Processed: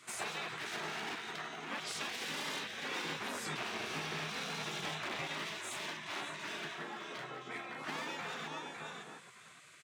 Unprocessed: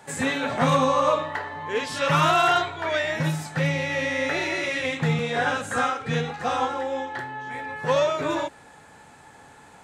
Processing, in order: feedback delay 557 ms, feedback 16%, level -10.5 dB; hard clipper -25.5 dBFS, distortion -7 dB; high-pass 210 Hz 24 dB/octave; tilt EQ -1.5 dB/octave; compression, threshold -30 dBFS, peak gain reduction 6.5 dB; spectral gate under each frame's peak -15 dB weak; 3.05–5.22 s: bass shelf 300 Hz +9 dB; trim +1 dB

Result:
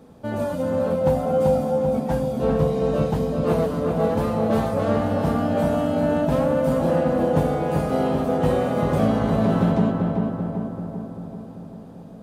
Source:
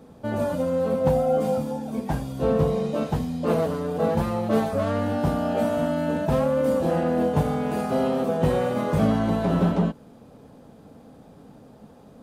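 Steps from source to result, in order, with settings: filtered feedback delay 389 ms, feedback 63%, low-pass 1.8 kHz, level -3 dB

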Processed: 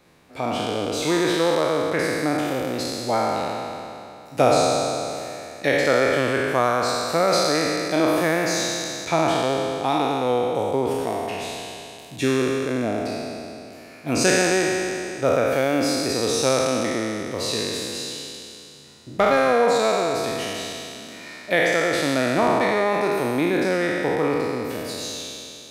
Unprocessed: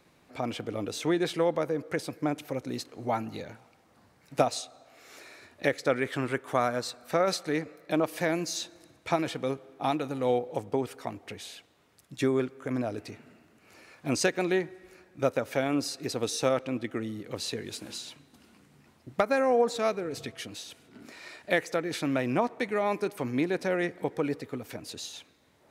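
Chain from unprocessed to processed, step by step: spectral sustain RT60 2.76 s; trim +3 dB

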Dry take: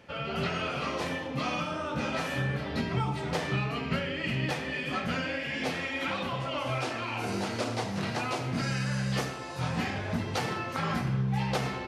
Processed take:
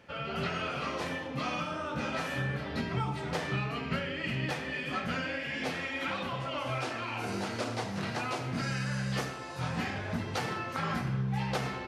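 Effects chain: peaking EQ 1.5 kHz +2.5 dB; trim -3 dB

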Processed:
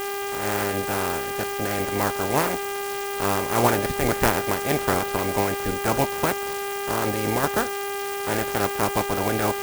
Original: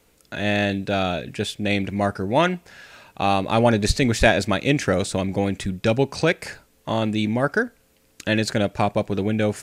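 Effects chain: spectral peaks clipped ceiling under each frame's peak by 26 dB; low-pass 1.3 kHz 12 dB/octave; mains buzz 400 Hz, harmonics 8, -29 dBFS -4 dB/octave; sampling jitter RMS 0.059 ms

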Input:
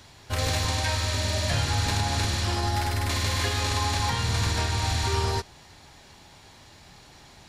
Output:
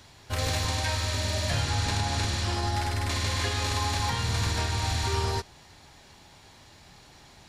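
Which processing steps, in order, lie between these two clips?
1.62–3.62 s: low-pass 11 kHz 12 dB/octave; trim -2 dB

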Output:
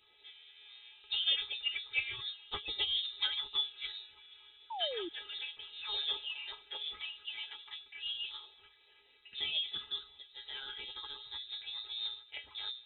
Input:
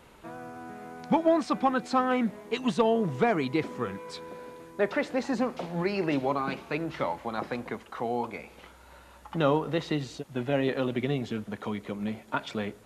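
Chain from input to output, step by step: inharmonic resonator 95 Hz, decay 0.44 s, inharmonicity 0.03; formant shift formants +4 st; frequency inversion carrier 3.9 kHz; painted sound fall, 4.70–5.09 s, 320–960 Hz -40 dBFS

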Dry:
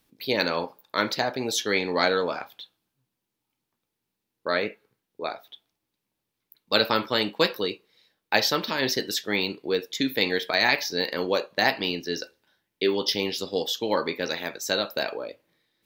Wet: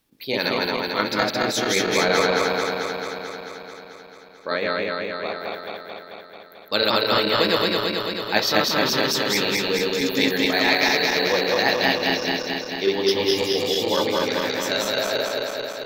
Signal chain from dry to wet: backward echo that repeats 110 ms, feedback 84%, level 0 dB; trim -1 dB

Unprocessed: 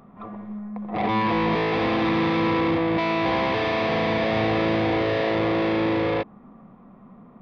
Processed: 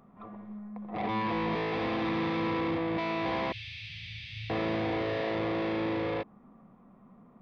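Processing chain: 3.52–4.50 s: elliptic band-stop 110–2600 Hz, stop band 50 dB; trim -8.5 dB

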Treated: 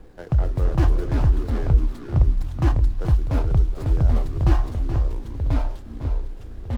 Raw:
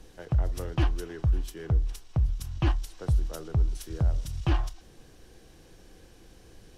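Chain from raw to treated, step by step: median filter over 15 samples; delay 426 ms -10 dB; ever faster or slower copies 193 ms, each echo -3 st, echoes 2; trim +5.5 dB

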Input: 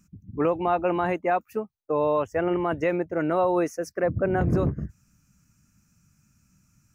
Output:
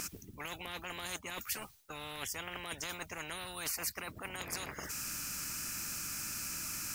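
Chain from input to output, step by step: treble shelf 2 kHz +11 dB; reverse; compression 6:1, threshold -35 dBFS, peak gain reduction 16.5 dB; reverse; spectrum-flattening compressor 10:1; trim +1 dB

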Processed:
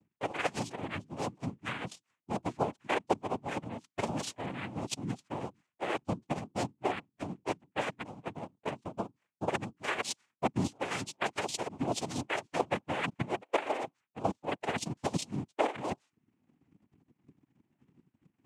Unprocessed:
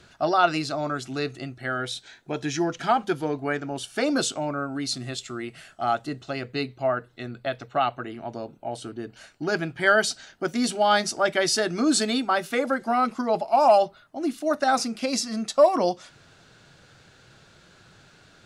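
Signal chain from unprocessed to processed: expander on every frequency bin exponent 1.5; level-controlled noise filter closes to 1.1 kHz, open at -19.5 dBFS; reverse; compression 6:1, threshold -37 dBFS, peak gain reduction 22 dB; reverse; transient shaper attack +11 dB, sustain -8 dB; in parallel at -11 dB: decimation with a swept rate 32×, swing 100% 0.29 Hz; on the sum: noise-vocoded speech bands 4

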